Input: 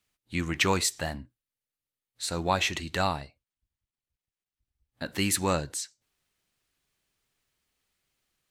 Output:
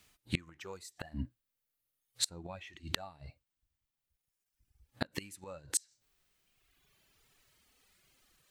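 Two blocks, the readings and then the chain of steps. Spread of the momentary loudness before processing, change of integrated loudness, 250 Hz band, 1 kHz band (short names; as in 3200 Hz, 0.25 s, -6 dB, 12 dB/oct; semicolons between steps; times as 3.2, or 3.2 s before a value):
12 LU, -11.0 dB, -12.0 dB, -19.0 dB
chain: flipped gate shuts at -21 dBFS, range -29 dB; reverb removal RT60 1.8 s; harmonic-percussive split percussive -11 dB; gain +16.5 dB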